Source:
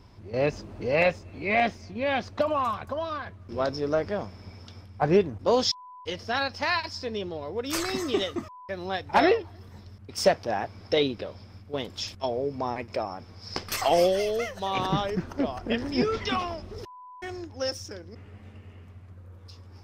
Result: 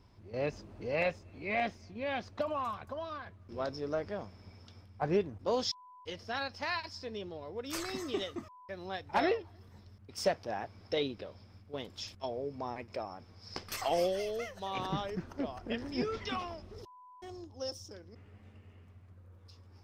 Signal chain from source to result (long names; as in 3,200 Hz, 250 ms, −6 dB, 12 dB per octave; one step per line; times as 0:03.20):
0:16.82–0:17.94: flat-topped bell 1,900 Hz −10.5 dB 1.1 octaves
level −9 dB